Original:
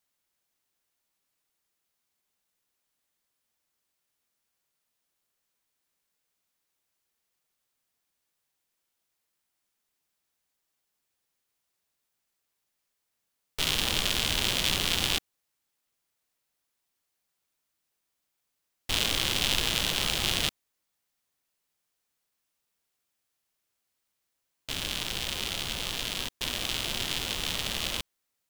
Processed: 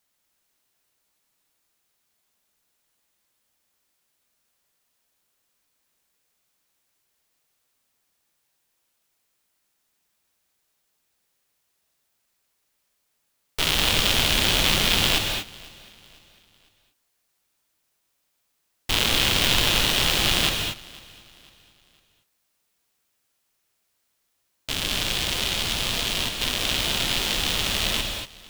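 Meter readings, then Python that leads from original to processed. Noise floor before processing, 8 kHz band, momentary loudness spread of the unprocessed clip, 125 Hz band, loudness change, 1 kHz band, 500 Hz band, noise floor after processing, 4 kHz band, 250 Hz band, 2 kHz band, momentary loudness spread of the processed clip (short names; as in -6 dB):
-81 dBFS, +6.0 dB, 7 LU, +8.0 dB, +6.5 dB, +8.0 dB, +8.0 dB, -74 dBFS, +6.5 dB, +8.0 dB, +7.5 dB, 10 LU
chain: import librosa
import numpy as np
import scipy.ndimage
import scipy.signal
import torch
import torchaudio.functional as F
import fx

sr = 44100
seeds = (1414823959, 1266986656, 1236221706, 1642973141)

y = np.minimum(x, 2.0 * 10.0 ** (-15.5 / 20.0) - x)
y = fx.echo_feedback(y, sr, ms=501, feedback_pct=39, wet_db=-23.0)
y = fx.rev_gated(y, sr, seeds[0], gate_ms=260, shape='rising', drr_db=3.5)
y = y * librosa.db_to_amplitude(6.0)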